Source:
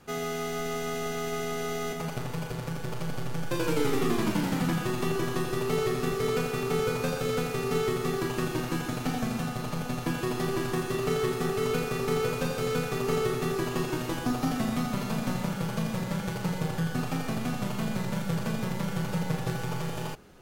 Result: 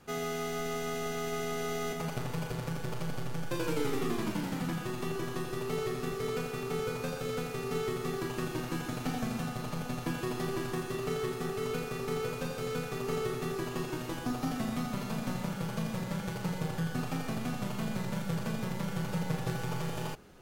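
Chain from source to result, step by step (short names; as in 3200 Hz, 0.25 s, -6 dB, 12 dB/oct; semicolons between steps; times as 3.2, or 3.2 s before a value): vocal rider within 4 dB 2 s; gain -5 dB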